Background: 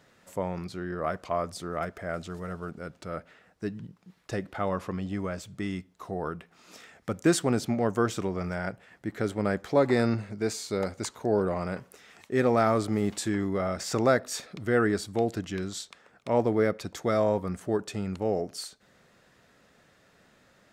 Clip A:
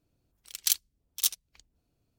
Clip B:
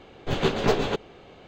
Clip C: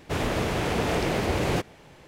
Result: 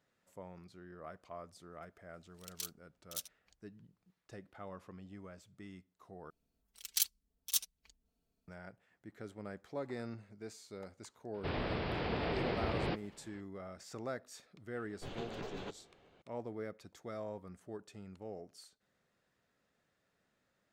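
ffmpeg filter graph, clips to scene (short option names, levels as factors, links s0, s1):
-filter_complex "[1:a]asplit=2[s0][s1];[0:a]volume=0.119[s2];[s0]alimiter=limit=0.2:level=0:latency=1:release=82[s3];[s1]aecho=1:1:4.5:0.79[s4];[3:a]aresample=11025,aresample=44100[s5];[2:a]acompressor=threshold=0.0794:ratio=6:attack=3.2:release=140:knee=1:detection=peak[s6];[s2]asplit=2[s7][s8];[s7]atrim=end=6.304[s9];[s4]atrim=end=2.18,asetpts=PTS-STARTPTS,volume=0.376[s10];[s8]atrim=start=8.476[s11];[s3]atrim=end=2.18,asetpts=PTS-STARTPTS,volume=0.251,afade=t=in:d=0.004:c=hsin,afade=t=out:st=2.176:d=0.004:c=hsin,adelay=1930[s12];[s5]atrim=end=2.07,asetpts=PTS-STARTPTS,volume=0.299,afade=t=in:d=0.004:c=hsin,afade=t=out:st=2.066:d=0.004:c=hsin,adelay=11340[s13];[s6]atrim=end=1.47,asetpts=PTS-STARTPTS,volume=0.141,afade=t=in:d=0.004:c=hsin,afade=t=out:st=1.466:d=0.004:c=hsin,adelay=14750[s14];[s9][s10]acrossfade=d=0.004:c1=hsin:c2=hsin[s15];[s15][s11]acrossfade=d=0.004:c1=hsin:c2=hsin[s16];[s16][s12][s13][s14]amix=inputs=4:normalize=0"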